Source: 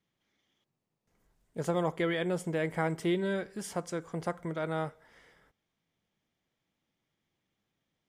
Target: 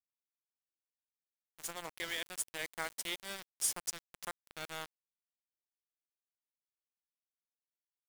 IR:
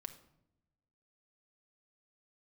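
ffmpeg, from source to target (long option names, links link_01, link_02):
-af "aderivative,aeval=exprs='val(0)*gte(abs(val(0)),0.00473)':channel_layout=same,dynaudnorm=framelen=550:gausssize=7:maxgain=6dB,volume=4.5dB"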